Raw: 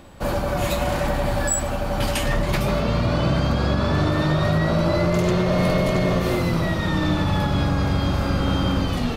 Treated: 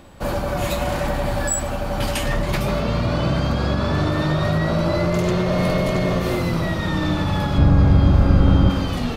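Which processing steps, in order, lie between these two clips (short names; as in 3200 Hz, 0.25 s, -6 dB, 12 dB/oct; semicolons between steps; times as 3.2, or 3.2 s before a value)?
7.58–8.7 tilt -2.5 dB/oct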